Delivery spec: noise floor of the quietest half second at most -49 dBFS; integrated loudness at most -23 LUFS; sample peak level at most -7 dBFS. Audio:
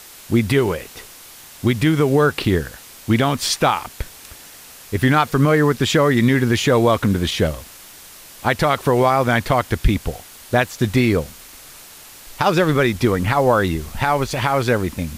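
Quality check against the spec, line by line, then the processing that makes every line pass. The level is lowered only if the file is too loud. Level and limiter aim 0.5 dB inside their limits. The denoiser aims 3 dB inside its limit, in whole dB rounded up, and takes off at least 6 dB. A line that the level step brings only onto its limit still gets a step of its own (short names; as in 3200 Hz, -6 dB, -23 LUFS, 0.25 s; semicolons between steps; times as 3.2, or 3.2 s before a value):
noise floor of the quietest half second -41 dBFS: fail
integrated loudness -18.0 LUFS: fail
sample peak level -4.5 dBFS: fail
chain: denoiser 6 dB, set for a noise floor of -41 dBFS; gain -5.5 dB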